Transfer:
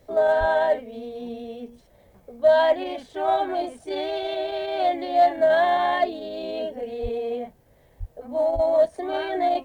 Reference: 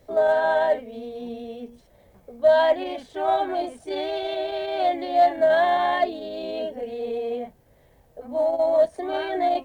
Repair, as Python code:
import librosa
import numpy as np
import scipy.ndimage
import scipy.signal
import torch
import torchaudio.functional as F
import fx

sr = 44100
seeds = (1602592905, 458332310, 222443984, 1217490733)

y = fx.fix_deplosive(x, sr, at_s=(0.39, 7.02, 7.99, 8.54))